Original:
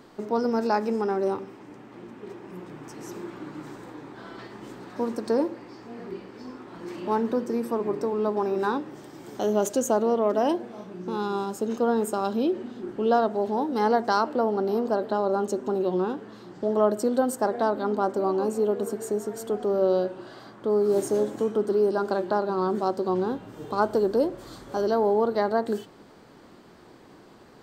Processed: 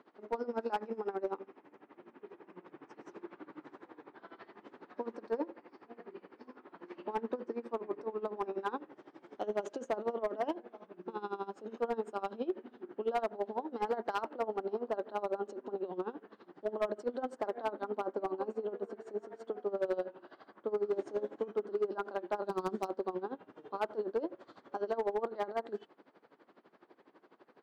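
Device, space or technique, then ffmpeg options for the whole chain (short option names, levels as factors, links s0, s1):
helicopter radio: -filter_complex "[0:a]highpass=320,lowpass=2600,lowpass=9800,aeval=exprs='val(0)*pow(10,-19*(0.5-0.5*cos(2*PI*12*n/s))/20)':c=same,asoftclip=type=hard:threshold=0.0891,asplit=3[s0][s1][s2];[s0]afade=t=out:st=22.42:d=0.02[s3];[s1]bass=f=250:g=8,treble=f=4000:g=15,afade=t=in:st=22.42:d=0.02,afade=t=out:st=22.86:d=0.02[s4];[s2]afade=t=in:st=22.86:d=0.02[s5];[s3][s4][s5]amix=inputs=3:normalize=0,volume=0.596"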